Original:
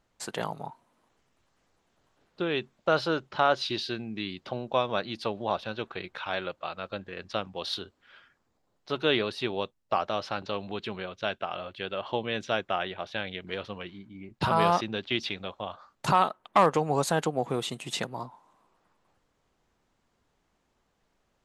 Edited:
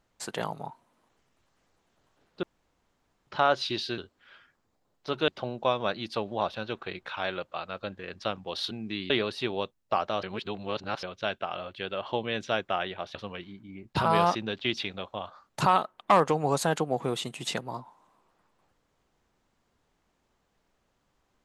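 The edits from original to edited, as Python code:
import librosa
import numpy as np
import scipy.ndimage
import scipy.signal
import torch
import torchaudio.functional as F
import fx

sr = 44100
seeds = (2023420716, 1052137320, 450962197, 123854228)

y = fx.edit(x, sr, fx.room_tone_fill(start_s=2.43, length_s=0.84),
    fx.swap(start_s=3.98, length_s=0.39, other_s=7.8, other_length_s=1.3),
    fx.reverse_span(start_s=10.23, length_s=0.8),
    fx.cut(start_s=13.15, length_s=0.46), tone=tone)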